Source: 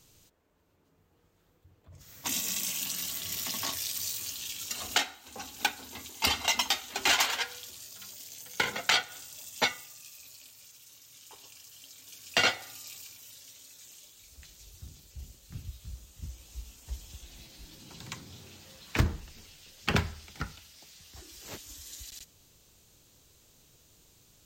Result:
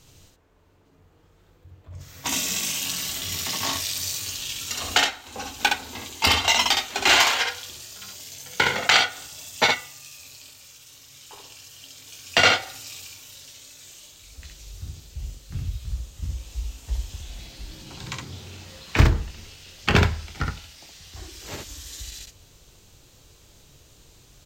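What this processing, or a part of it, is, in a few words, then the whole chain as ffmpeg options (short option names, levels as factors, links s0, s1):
low shelf boost with a cut just above: -af "lowshelf=f=87:g=5,equalizer=f=210:t=o:w=0.89:g=-3,highshelf=f=8400:g=-9.5,aecho=1:1:22|66:0.376|0.668,volume=2.37"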